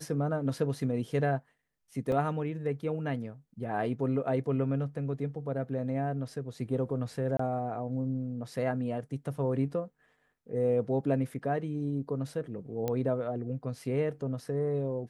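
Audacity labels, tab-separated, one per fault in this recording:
2.120000	2.120000	gap 2.4 ms
7.370000	7.390000	gap 24 ms
12.880000	12.880000	pop -18 dBFS

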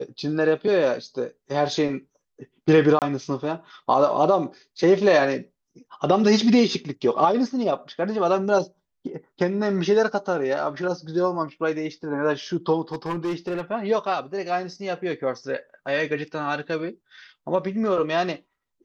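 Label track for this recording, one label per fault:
2.990000	3.020000	gap 28 ms
12.920000	13.610000	clipped -22.5 dBFS

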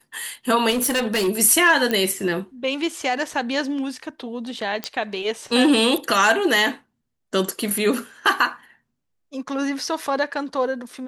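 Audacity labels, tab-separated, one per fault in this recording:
0.700000	1.290000	clipped -18 dBFS
1.910000	1.910000	pop -9 dBFS
4.840000	4.840000	pop -9 dBFS

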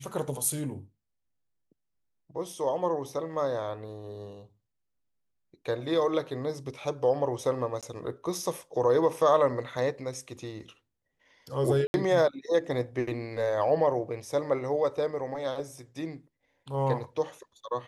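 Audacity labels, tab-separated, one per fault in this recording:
7.810000	7.830000	gap 17 ms
11.870000	11.940000	gap 71 ms

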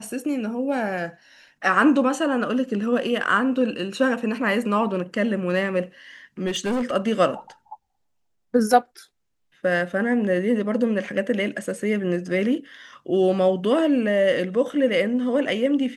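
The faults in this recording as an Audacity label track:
6.460000	6.920000	clipped -20.5 dBFS

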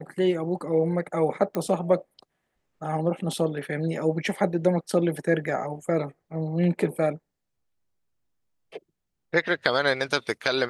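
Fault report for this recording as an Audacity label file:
1.550000	1.550000	pop -16 dBFS

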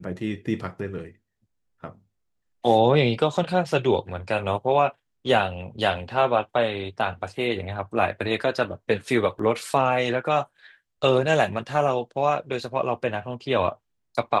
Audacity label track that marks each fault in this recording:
9.390000	9.390000	gap 4.2 ms

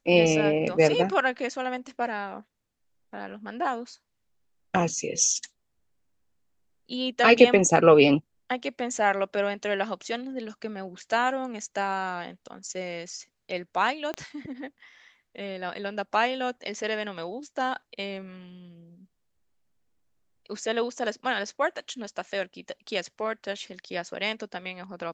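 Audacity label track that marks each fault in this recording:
14.140000	14.140000	pop -18 dBFS

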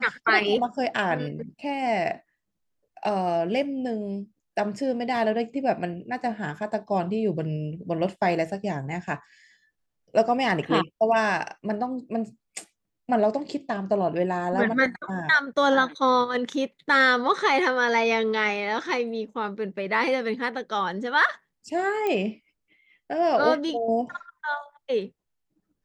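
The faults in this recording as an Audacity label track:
22.070000	22.070000	pop -15 dBFS

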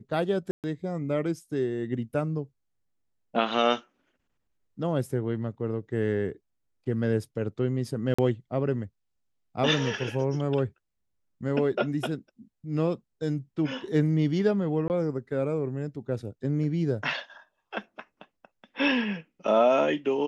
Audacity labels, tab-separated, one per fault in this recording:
0.510000	0.640000	gap 0.128 s
8.140000	8.190000	gap 45 ms
14.880000	14.900000	gap 19 ms

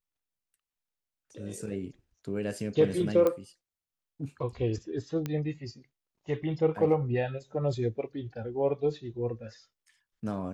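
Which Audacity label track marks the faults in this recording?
3.270000	3.270000	pop -15 dBFS
5.260000	5.260000	pop -19 dBFS

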